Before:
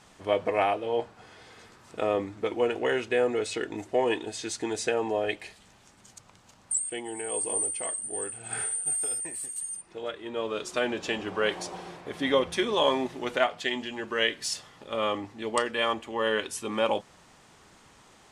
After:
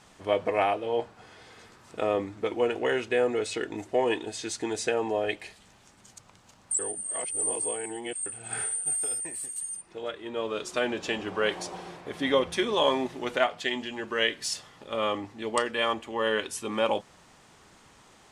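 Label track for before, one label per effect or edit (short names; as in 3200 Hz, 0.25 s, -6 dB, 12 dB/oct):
6.790000	8.260000	reverse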